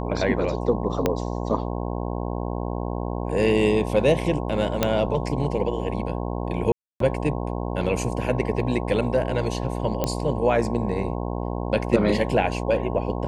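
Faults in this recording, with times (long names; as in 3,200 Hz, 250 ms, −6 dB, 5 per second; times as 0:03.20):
mains buzz 60 Hz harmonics 18 −28 dBFS
0:01.06: click −7 dBFS
0:04.83: click −5 dBFS
0:06.72–0:07.00: drop-out 283 ms
0:10.04: click −9 dBFS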